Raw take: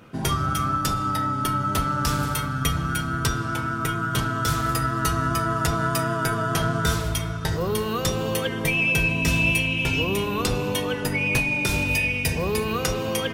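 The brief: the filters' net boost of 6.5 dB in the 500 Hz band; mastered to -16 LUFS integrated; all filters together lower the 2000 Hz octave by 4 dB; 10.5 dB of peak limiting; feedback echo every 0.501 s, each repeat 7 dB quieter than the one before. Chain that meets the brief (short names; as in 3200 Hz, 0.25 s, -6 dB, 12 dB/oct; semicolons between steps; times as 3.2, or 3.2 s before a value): bell 500 Hz +8 dB; bell 2000 Hz -6.5 dB; limiter -19 dBFS; feedback echo 0.501 s, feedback 45%, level -7 dB; gain +10.5 dB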